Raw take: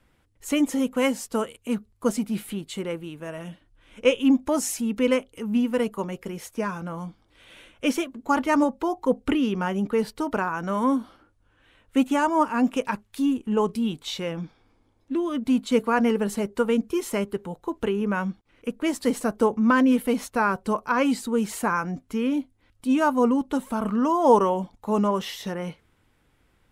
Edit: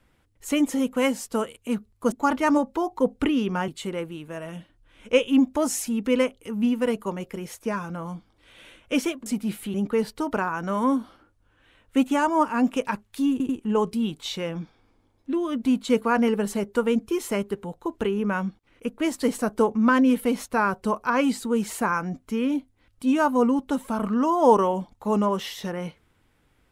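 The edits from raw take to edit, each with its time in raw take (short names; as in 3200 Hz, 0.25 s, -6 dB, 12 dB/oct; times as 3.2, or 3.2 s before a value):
2.12–2.6 swap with 8.18–9.74
13.31 stutter 0.09 s, 3 plays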